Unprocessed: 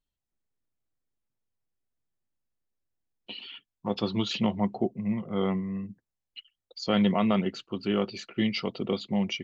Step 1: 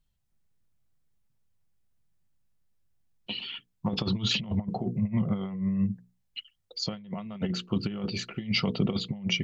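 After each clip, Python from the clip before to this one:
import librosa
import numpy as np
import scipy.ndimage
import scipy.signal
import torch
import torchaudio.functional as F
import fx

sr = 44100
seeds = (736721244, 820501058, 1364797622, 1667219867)

y = fx.low_shelf_res(x, sr, hz=220.0, db=7.5, q=1.5)
y = fx.hum_notches(y, sr, base_hz=60, count=8)
y = fx.over_compress(y, sr, threshold_db=-28.0, ratio=-0.5)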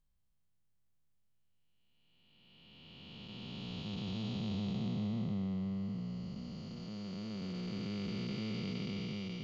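y = fx.spec_blur(x, sr, span_ms=1430.0)
y = y * 10.0 ** (-3.5 / 20.0)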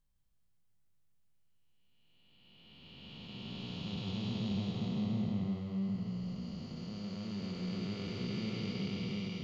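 y = x + 10.0 ** (-3.5 / 20.0) * np.pad(x, (int(160 * sr / 1000.0), 0))[:len(x)]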